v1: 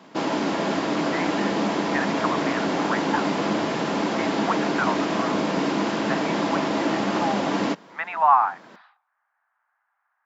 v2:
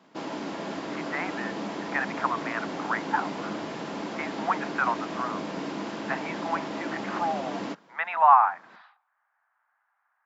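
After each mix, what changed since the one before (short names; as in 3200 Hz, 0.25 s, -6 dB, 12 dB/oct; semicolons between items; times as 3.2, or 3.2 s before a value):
first sound -10.0 dB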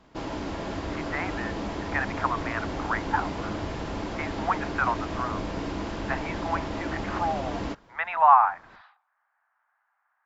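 master: remove Chebyshev high-pass 180 Hz, order 3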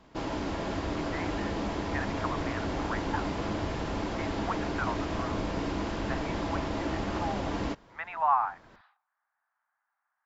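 speech -8.5 dB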